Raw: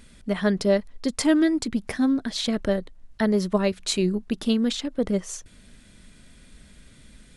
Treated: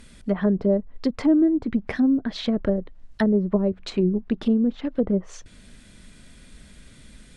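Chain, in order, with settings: low-pass that closes with the level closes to 490 Hz, closed at -19 dBFS; trim +2.5 dB

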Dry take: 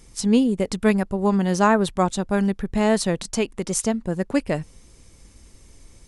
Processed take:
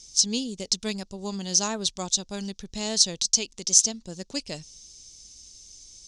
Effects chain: resonant low-pass 6.1 kHz, resonance Q 3.6; resonant high shelf 2.6 kHz +14 dB, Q 1.5; trim -13 dB

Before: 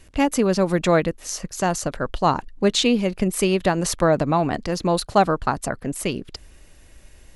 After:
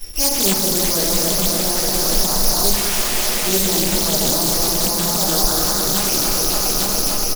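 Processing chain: backward echo that repeats 143 ms, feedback 85%, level -8.5 dB; peak limiter -24 dBFS, peak gain reduction 20.5 dB; transient shaper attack -7 dB, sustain -2 dB; 2.73–3.46 s: integer overflow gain 30 dB; flange 1.1 Hz, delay 1.9 ms, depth 3.4 ms, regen +56%; careless resampling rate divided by 8×, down none, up zero stuff; delay 196 ms -7 dB; simulated room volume 48 m³, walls mixed, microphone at 1.4 m; loudspeaker Doppler distortion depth 0.58 ms; trim +3.5 dB

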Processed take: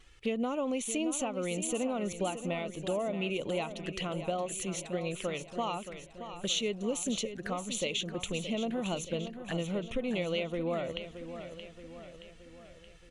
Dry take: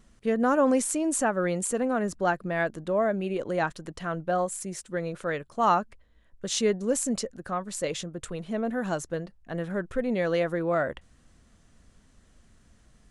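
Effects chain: peaking EQ 2.7 kHz +14 dB 1.4 oct; compression 6:1, threshold -28 dBFS, peak gain reduction 13.5 dB; touch-sensitive flanger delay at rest 2.8 ms, full sweep at -32 dBFS; feedback delay 624 ms, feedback 54%, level -10.5 dB

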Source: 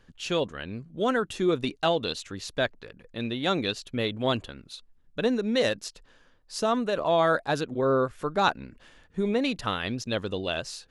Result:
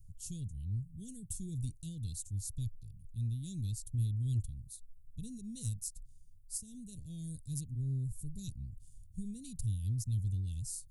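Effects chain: Chebyshev band-stop 110–8900 Hz, order 3; in parallel at -6 dB: saturation -36.5 dBFS, distortion -19 dB; 6.57–7.10 s: on the sum: compression 5:1, threshold -47 dBFS, peak gain reduction 8 dB; trim +4.5 dB

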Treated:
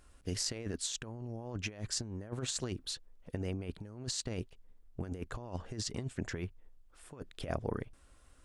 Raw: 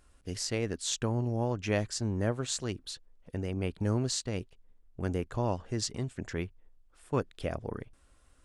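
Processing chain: compressor with a negative ratio -35 dBFS, ratio -0.5; trim -2.5 dB

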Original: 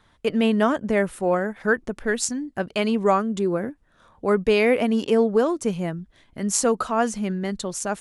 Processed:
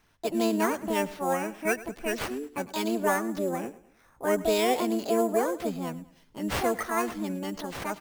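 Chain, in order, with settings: sample-rate reducer 7.5 kHz, jitter 0%; feedback delay 105 ms, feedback 40%, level -18 dB; harmony voices +7 st 0 dB; trim -9 dB

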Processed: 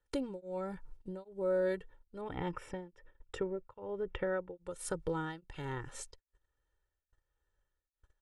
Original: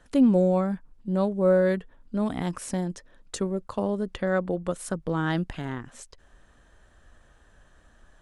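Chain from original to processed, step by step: gate -49 dBFS, range -28 dB; comb 2.2 ms, depth 80%; compression 2:1, threshold -38 dBFS, peak gain reduction 12.5 dB; 2.21–4.56 s: Savitzky-Golay filter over 25 samples; tremolo of two beating tones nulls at 1.2 Hz

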